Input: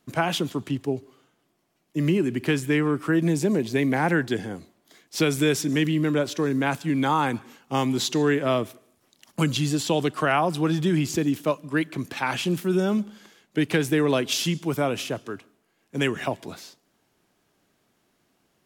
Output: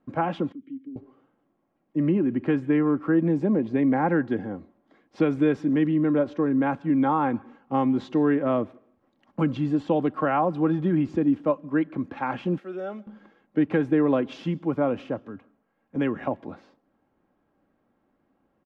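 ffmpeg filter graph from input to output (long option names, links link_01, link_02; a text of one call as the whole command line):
ffmpeg -i in.wav -filter_complex "[0:a]asettb=1/sr,asplit=3[link_01][link_02][link_03];[link_01]atrim=end=0.524[link_04];[link_02]atrim=start=0.52:end=0.96,asetpts=PTS-STARTPTS,afade=type=in:duration=0.004:curve=qsin,afade=type=out:start_time=0.436:duration=0.004:curve=qsin,acompressor=threshold=-30dB:ratio=10:attack=3.2:release=140:knee=1:detection=peak,asplit=3[link_05][link_06][link_07];[link_05]bandpass=frequency=270:width_type=q:width=8,volume=0dB[link_08];[link_06]bandpass=frequency=2290:width_type=q:width=8,volume=-6dB[link_09];[link_07]bandpass=frequency=3010:width_type=q:width=8,volume=-9dB[link_10];[link_08][link_09][link_10]amix=inputs=3:normalize=0[link_11];[link_03]atrim=start=0.956[link_12];[link_04][link_11]acrossfade=duration=0.004:curve1=hsin:curve2=qsin[link_13];[link_13][link_12]acrossfade=duration=0.004:curve1=qsin:curve2=hsin,asettb=1/sr,asplit=3[link_14][link_15][link_16];[link_14]atrim=end=12.584[link_17];[link_15]atrim=start=12.58:end=13.07,asetpts=PTS-STARTPTS,afade=type=in:duration=0.004:curve=qsin,afade=type=out:start_time=0.486:duration=0.004:curve=qsin,highpass=580,equalizer=frequency=980:width=3.9:gain=-14.5[link_18];[link_16]atrim=start=13.066[link_19];[link_17][link_18]acrossfade=duration=0.004:curve1=hsin:curve2=qsin[link_20];[link_20][link_19]acrossfade=duration=0.004:curve1=qsin:curve2=hsin,asettb=1/sr,asplit=3[link_21][link_22][link_23];[link_21]atrim=end=15.274[link_24];[link_22]atrim=start=15.27:end=15.96,asetpts=PTS-STARTPTS,afade=type=in:duration=0.004:curve=qsin,afade=type=out:start_time=0.686:duration=0.004:curve=qsin,equalizer=frequency=350:width=4.4:gain=-9.5,acrossover=split=420|3000[link_25][link_26][link_27];[link_26]acompressor=threshold=-44dB:ratio=3:attack=3.2:release=140:knee=2.83:detection=peak[link_28];[link_25][link_28][link_27]amix=inputs=3:normalize=0[link_29];[link_23]atrim=start=15.956[link_30];[link_24][link_29]acrossfade=duration=0.004:curve1=hsin:curve2=qsin[link_31];[link_31][link_30]acrossfade=duration=0.004:curve1=qsin:curve2=hsin,lowpass=1200,aecho=1:1:3.7:0.4" out.wav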